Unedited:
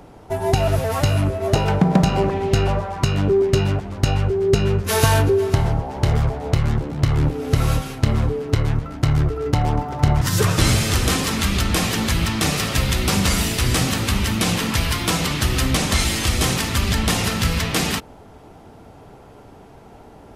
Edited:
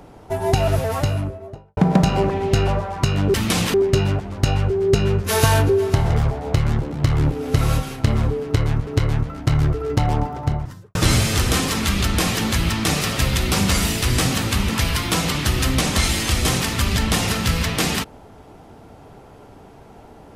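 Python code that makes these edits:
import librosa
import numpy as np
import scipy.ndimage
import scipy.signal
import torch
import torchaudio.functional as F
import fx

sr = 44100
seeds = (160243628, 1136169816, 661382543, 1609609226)

y = fx.studio_fade_out(x, sr, start_s=0.75, length_s=1.02)
y = fx.studio_fade_out(y, sr, start_s=9.7, length_s=0.81)
y = fx.edit(y, sr, fx.cut(start_s=5.7, length_s=0.39),
    fx.repeat(start_s=8.43, length_s=0.43, count=2),
    fx.move(start_s=14.25, length_s=0.4, to_s=3.34), tone=tone)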